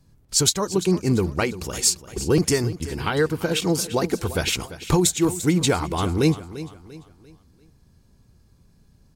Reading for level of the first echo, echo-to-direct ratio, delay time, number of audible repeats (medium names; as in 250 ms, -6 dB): -14.5 dB, -14.0 dB, 344 ms, 3